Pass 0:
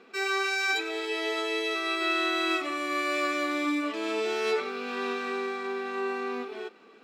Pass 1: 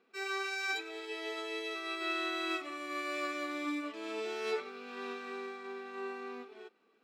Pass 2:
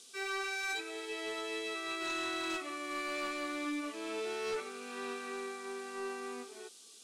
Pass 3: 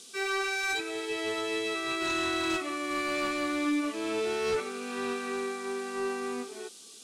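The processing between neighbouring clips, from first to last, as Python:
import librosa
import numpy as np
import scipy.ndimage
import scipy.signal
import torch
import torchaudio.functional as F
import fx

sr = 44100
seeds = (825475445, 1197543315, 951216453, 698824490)

y1 = fx.upward_expand(x, sr, threshold_db=-44.0, expansion=1.5)
y1 = y1 * librosa.db_to_amplitude(-6.5)
y2 = fx.fold_sine(y1, sr, drive_db=6, ceiling_db=-24.0)
y2 = fx.dmg_noise_band(y2, sr, seeds[0], low_hz=3000.0, high_hz=10000.0, level_db=-48.0)
y2 = y2 * librosa.db_to_amplitude(-8.5)
y3 = fx.peak_eq(y2, sr, hz=97.0, db=12.5, octaves=2.1)
y3 = y3 * librosa.db_to_amplitude(6.0)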